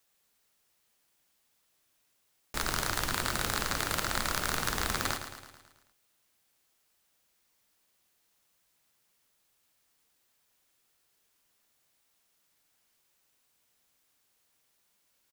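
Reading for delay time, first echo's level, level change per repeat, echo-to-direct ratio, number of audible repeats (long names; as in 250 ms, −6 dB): 109 ms, −9.5 dB, −5.0 dB, −8.0 dB, 6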